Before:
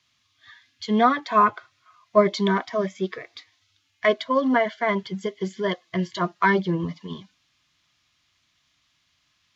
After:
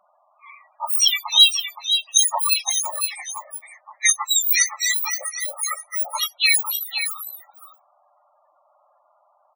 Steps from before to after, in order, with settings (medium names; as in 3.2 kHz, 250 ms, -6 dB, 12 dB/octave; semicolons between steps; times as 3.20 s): spectrum inverted on a logarithmic axis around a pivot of 2 kHz; in parallel at -9 dB: hard clipper -17.5 dBFS, distortion -15 dB; on the sum: loudest bins only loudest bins 16; delay 519 ms -8 dB; trim +6.5 dB